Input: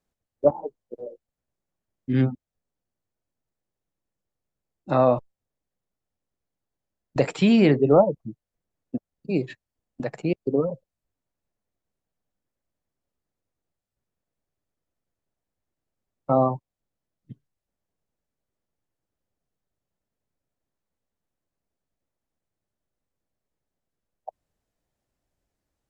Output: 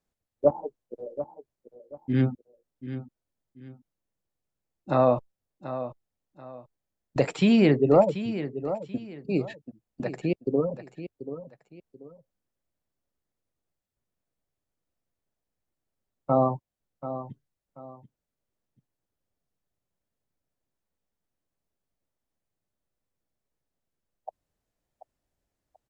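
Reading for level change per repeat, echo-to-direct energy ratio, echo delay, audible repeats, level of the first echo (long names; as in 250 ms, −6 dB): −11.0 dB, −11.5 dB, 735 ms, 2, −12.0 dB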